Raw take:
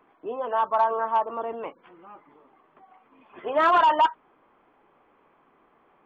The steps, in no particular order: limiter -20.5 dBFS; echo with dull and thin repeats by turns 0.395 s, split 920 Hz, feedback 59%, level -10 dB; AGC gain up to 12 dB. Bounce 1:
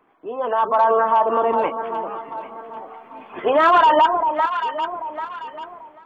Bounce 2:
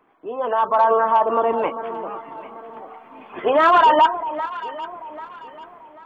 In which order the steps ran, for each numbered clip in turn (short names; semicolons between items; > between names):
echo with dull and thin repeats by turns > limiter > AGC; limiter > AGC > echo with dull and thin repeats by turns